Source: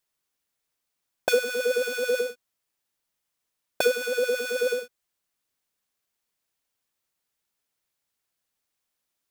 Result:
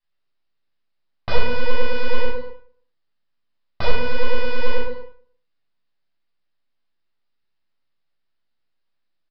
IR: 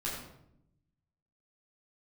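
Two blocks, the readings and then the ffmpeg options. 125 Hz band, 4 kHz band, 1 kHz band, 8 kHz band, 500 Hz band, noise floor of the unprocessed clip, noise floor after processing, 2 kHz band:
n/a, +1.5 dB, +9.0 dB, under -25 dB, -1.5 dB, -82 dBFS, -71 dBFS, +1.0 dB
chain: -filter_complex "[0:a]aresample=11025,aeval=exprs='max(val(0),0)':c=same,aresample=44100,asplit=2[a][b];[b]adelay=154,lowpass=f=1.6k:p=1,volume=-23.5dB,asplit=2[c][d];[d]adelay=154,lowpass=f=1.6k:p=1,volume=0.34[e];[a][c][e]amix=inputs=3:normalize=0[f];[1:a]atrim=start_sample=2205,afade=t=out:st=0.39:d=0.01,atrim=end_sample=17640[g];[f][g]afir=irnorm=-1:irlink=0,volume=1.5dB"

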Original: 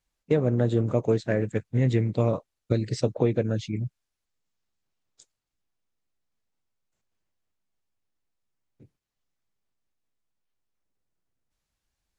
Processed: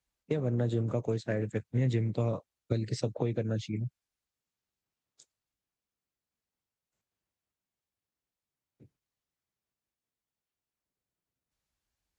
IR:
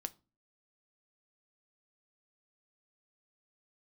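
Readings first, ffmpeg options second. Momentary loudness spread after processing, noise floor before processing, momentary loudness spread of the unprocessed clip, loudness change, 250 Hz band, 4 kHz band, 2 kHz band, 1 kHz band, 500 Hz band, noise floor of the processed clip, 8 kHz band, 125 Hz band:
6 LU, -84 dBFS, 7 LU, -6.5 dB, -6.5 dB, -4.5 dB, -6.5 dB, -7.0 dB, -8.0 dB, under -85 dBFS, n/a, -5.0 dB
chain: -filter_complex "[0:a]highpass=40,acrossover=split=140|3000[a][b][c];[b]acompressor=threshold=-24dB:ratio=6[d];[a][d][c]amix=inputs=3:normalize=0,volume=-4dB"

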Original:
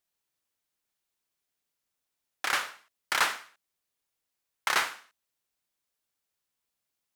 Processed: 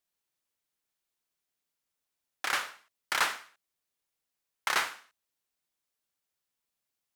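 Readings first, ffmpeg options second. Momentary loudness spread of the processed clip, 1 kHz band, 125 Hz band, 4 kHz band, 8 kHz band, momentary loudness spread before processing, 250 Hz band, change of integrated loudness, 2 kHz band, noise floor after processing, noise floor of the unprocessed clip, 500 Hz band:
14 LU, -2.0 dB, n/a, -2.0 dB, -2.0 dB, 14 LU, -2.0 dB, -2.0 dB, -2.0 dB, under -85 dBFS, -85 dBFS, -2.0 dB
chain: -af "bandreject=f=50:t=h:w=6,bandreject=f=100:t=h:w=6,volume=-2dB"

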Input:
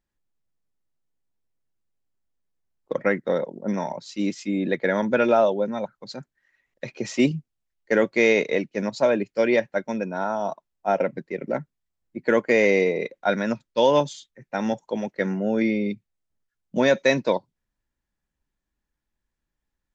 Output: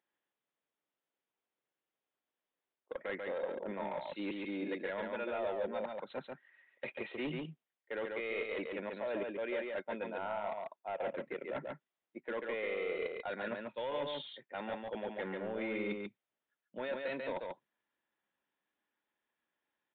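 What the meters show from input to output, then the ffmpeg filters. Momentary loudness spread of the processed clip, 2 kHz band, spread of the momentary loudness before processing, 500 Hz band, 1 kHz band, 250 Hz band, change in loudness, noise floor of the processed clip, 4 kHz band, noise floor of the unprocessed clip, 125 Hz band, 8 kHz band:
8 LU, -14.5 dB, 13 LU, -15.5 dB, -14.0 dB, -18.0 dB, -16.0 dB, under -85 dBFS, -13.5 dB, -83 dBFS, -19.0 dB, n/a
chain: -filter_complex "[0:a]highpass=400,alimiter=limit=-14.5dB:level=0:latency=1:release=102,areverse,acompressor=threshold=-37dB:ratio=5,areverse,asoftclip=type=hard:threshold=-34.5dB,asplit=2[a][b];[b]aecho=0:1:140:0.668[c];[a][c]amix=inputs=2:normalize=0,aresample=8000,aresample=44100,volume=1dB"

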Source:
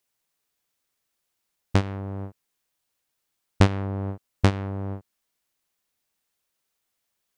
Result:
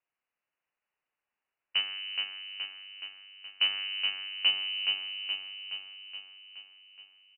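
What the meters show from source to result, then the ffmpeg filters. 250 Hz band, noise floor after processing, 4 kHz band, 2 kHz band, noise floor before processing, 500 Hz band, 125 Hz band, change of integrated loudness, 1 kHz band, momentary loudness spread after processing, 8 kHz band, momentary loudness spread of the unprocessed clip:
under -35 dB, under -85 dBFS, +15.0 dB, +3.5 dB, -79 dBFS, under -25 dB, under -40 dB, -4.0 dB, -16.0 dB, 19 LU, under -30 dB, 14 LU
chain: -filter_complex "[0:a]highpass=f=100:w=0.5412,highpass=f=100:w=1.3066,aresample=16000,asoftclip=type=tanh:threshold=-13dB,aresample=44100,asplit=2[a][b];[b]adelay=43,volume=-13dB[c];[a][c]amix=inputs=2:normalize=0,aecho=1:1:422|844|1266|1688|2110|2532|2954|3376:0.631|0.372|0.22|0.13|0.0765|0.0451|0.0266|0.0157,lowpass=f=2.6k:t=q:w=0.5098,lowpass=f=2.6k:t=q:w=0.6013,lowpass=f=2.6k:t=q:w=0.9,lowpass=f=2.6k:t=q:w=2.563,afreqshift=-3100,volume=-4.5dB"

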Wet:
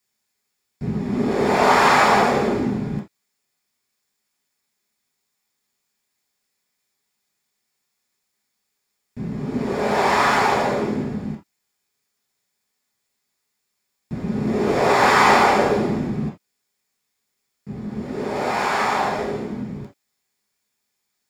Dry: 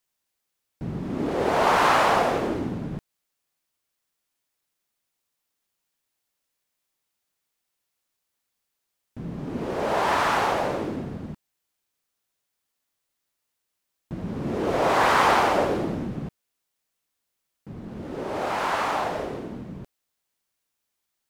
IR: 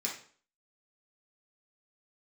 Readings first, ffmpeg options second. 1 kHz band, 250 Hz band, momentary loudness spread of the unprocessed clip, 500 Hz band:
+4.5 dB, +6.5 dB, 20 LU, +4.5 dB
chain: -filter_complex "[1:a]atrim=start_sample=2205,atrim=end_sample=3969[a];[0:a][a]afir=irnorm=-1:irlink=0,volume=2.5dB"

